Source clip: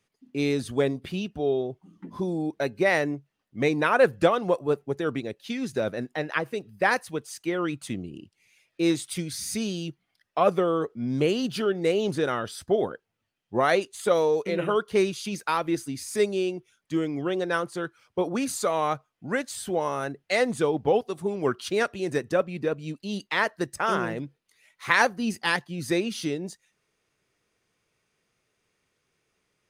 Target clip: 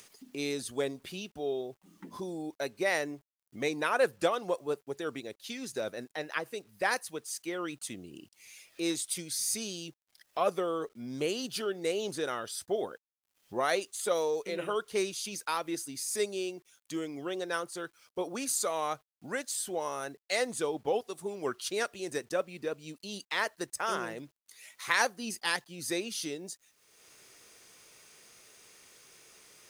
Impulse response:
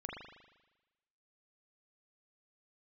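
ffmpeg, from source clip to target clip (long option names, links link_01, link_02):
-af "bass=frequency=250:gain=-9,treble=frequency=4000:gain=10,acompressor=mode=upward:threshold=-32dB:ratio=2.5,acrusher=bits=9:mix=0:aa=0.000001,volume=-7dB"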